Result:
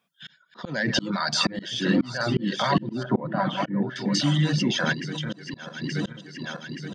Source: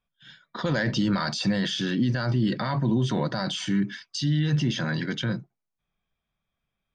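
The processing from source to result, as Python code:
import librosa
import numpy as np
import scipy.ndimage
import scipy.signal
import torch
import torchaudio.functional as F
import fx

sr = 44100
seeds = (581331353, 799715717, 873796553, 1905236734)

y = fx.reverse_delay_fb(x, sr, ms=438, feedback_pct=61, wet_db=-6)
y = fx.lowpass(y, sr, hz=1400.0, slope=12, at=(3.03, 3.96))
y = fx.dereverb_blind(y, sr, rt60_s=1.1)
y = scipy.signal.sosfilt(scipy.signal.butter(4, 150.0, 'highpass', fs=sr, output='sos'), y)
y = fx.level_steps(y, sr, step_db=21, at=(4.92, 5.32), fade=0.02)
y = fx.auto_swell(y, sr, attack_ms=472.0)
y = fx.rider(y, sr, range_db=4, speed_s=0.5)
y = y * librosa.db_to_amplitude(8.5)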